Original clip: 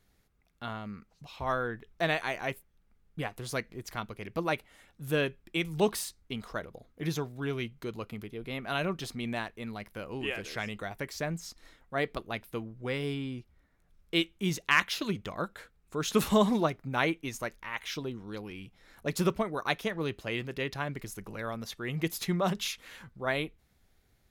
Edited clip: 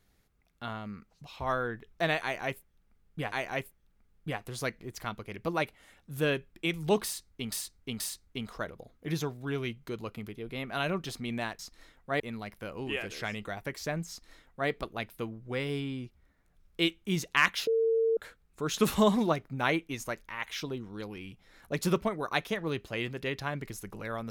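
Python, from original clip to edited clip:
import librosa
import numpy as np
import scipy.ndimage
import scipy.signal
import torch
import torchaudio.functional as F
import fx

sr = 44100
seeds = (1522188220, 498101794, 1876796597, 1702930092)

y = fx.edit(x, sr, fx.repeat(start_s=2.23, length_s=1.09, count=2),
    fx.repeat(start_s=5.95, length_s=0.48, count=3),
    fx.duplicate(start_s=11.43, length_s=0.61, to_s=9.54),
    fx.bleep(start_s=15.01, length_s=0.5, hz=452.0, db=-23.0), tone=tone)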